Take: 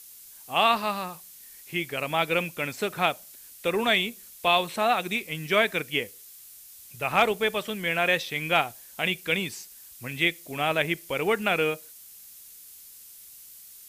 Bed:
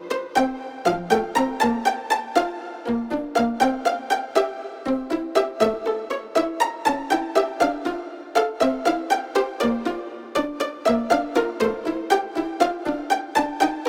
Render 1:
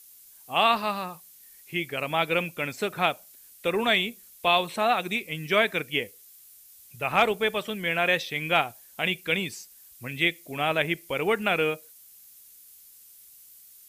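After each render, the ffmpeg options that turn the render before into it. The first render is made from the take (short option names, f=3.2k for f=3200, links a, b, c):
-af "afftdn=nr=6:nf=-48"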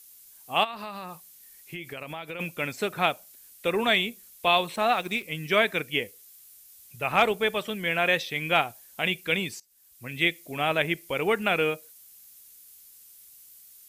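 -filter_complex "[0:a]asplit=3[a][b][c];[a]afade=t=out:st=0.63:d=0.02[d];[b]acompressor=threshold=-33dB:ratio=8:attack=3.2:release=140:knee=1:detection=peak,afade=t=in:st=0.63:d=0.02,afade=t=out:st=2.39:d=0.02[e];[c]afade=t=in:st=2.39:d=0.02[f];[d][e][f]amix=inputs=3:normalize=0,asettb=1/sr,asplit=3[g][h][i];[g]atrim=end=4.754[j];[h]atrim=start=4.75:end=5.23,asetpts=PTS-STARTPTS,afade=t=in:d=0.004:c=qsin,afade=t=out:st=0.476:d=0.004:c=qsin,aeval=exprs='sgn(val(0))*max(abs(val(0))-0.00376,0)':c=same[k];[i]atrim=start=5.226[l];[j][k]acrossfade=d=0.004:c1=hsin:c2=qsin[m];[m][l]acrossfade=d=0.004:c1=qsin:c2=hsin,asplit=2[n][o];[n]atrim=end=9.6,asetpts=PTS-STARTPTS,afade=t=out:st=9.596:d=0.004:c=hsin:silence=0.0749894[p];[o]atrim=start=9.6,asetpts=PTS-STARTPTS,afade=t=in:d=0.63:silence=0.0749894[q];[p][q]concat=n=2:v=0:a=1"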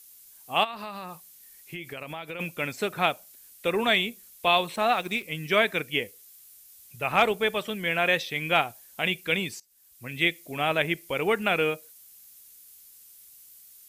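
-af anull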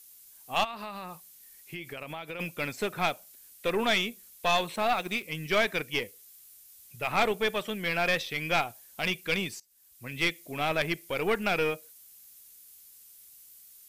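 -af "aeval=exprs='(tanh(7.08*val(0)+0.45)-tanh(0.45))/7.08':c=same"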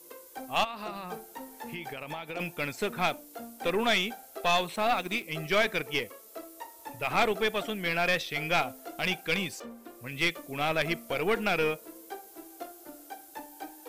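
-filter_complex "[1:a]volume=-23dB[a];[0:a][a]amix=inputs=2:normalize=0"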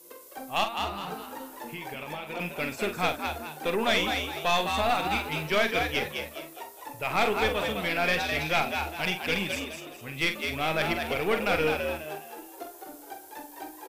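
-filter_complex "[0:a]asplit=2[a][b];[b]adelay=45,volume=-8.5dB[c];[a][c]amix=inputs=2:normalize=0,asplit=2[d][e];[e]asplit=4[f][g][h][i];[f]adelay=208,afreqshift=75,volume=-5dB[j];[g]adelay=416,afreqshift=150,volume=-13.9dB[k];[h]adelay=624,afreqshift=225,volume=-22.7dB[l];[i]adelay=832,afreqshift=300,volume=-31.6dB[m];[j][k][l][m]amix=inputs=4:normalize=0[n];[d][n]amix=inputs=2:normalize=0"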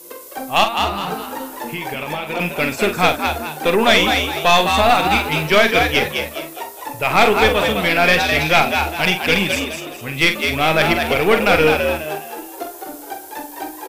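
-af "volume=12dB,alimiter=limit=-1dB:level=0:latency=1"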